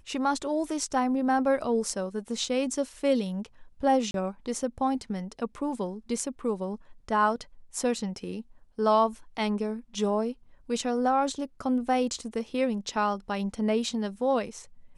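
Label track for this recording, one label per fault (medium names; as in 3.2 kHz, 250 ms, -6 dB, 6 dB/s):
4.110000	4.140000	dropout 32 ms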